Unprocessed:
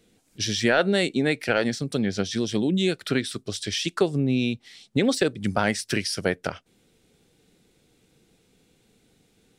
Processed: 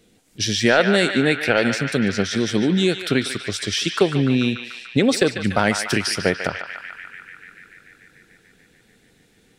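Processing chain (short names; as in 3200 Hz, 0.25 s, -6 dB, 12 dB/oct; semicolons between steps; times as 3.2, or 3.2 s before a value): narrowing echo 0.146 s, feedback 82%, band-pass 1900 Hz, level -6 dB; gain +4.5 dB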